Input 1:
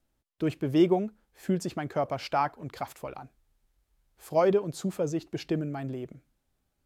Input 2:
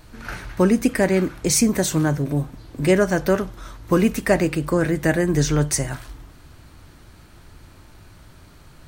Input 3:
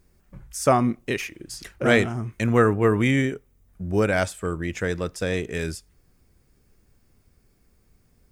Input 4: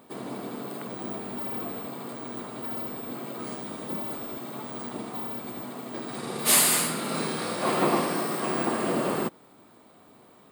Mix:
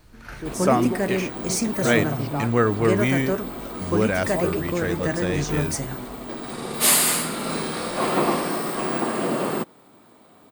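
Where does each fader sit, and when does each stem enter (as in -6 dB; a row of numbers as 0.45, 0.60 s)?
-5.5, -7.0, -1.5, +2.5 dB; 0.00, 0.00, 0.00, 0.35 s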